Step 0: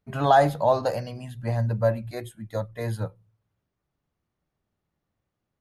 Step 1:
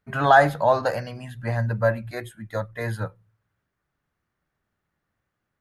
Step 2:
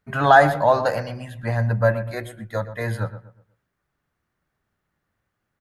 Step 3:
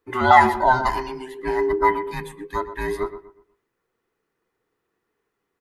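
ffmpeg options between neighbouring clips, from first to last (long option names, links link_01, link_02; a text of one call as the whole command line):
ffmpeg -i in.wav -af "equalizer=frequency=1600:width=1.4:gain=10.5" out.wav
ffmpeg -i in.wav -filter_complex "[0:a]asplit=2[link_01][link_02];[link_02]adelay=121,lowpass=frequency=1800:poles=1,volume=-12dB,asplit=2[link_03][link_04];[link_04]adelay=121,lowpass=frequency=1800:poles=1,volume=0.35,asplit=2[link_05][link_06];[link_06]adelay=121,lowpass=frequency=1800:poles=1,volume=0.35,asplit=2[link_07][link_08];[link_08]adelay=121,lowpass=frequency=1800:poles=1,volume=0.35[link_09];[link_01][link_03][link_05][link_07][link_09]amix=inputs=5:normalize=0,volume=2dB" out.wav
ffmpeg -i in.wav -af "afftfilt=real='real(if(between(b,1,1008),(2*floor((b-1)/24)+1)*24-b,b),0)':imag='imag(if(between(b,1,1008),(2*floor((b-1)/24)+1)*24-b,b),0)*if(between(b,1,1008),-1,1)':win_size=2048:overlap=0.75" out.wav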